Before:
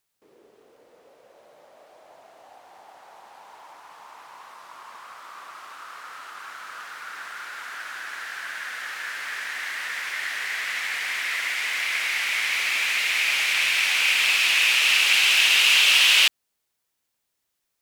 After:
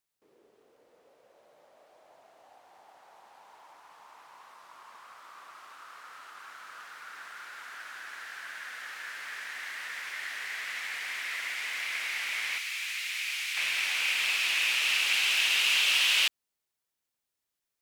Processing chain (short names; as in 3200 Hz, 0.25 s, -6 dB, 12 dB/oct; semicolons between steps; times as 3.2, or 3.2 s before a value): 12.58–13.57 passive tone stack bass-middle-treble 10-0-10; gain -8 dB